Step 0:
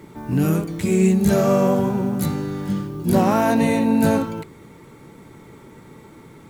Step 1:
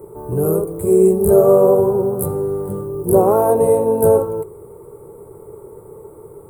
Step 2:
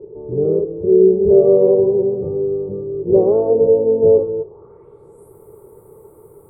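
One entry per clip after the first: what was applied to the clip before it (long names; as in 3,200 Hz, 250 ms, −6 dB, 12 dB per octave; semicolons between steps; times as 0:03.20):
drawn EQ curve 100 Hz 0 dB, 270 Hz −15 dB, 410 Hz +11 dB, 650 Hz 0 dB, 1,200 Hz −4 dB, 1,800 Hz −24 dB, 6,000 Hz −28 dB, 8,800 Hz +4 dB; level +4 dB
low-pass filter sweep 450 Hz → 15,000 Hz, 0:04.37–0:05.35; level −5.5 dB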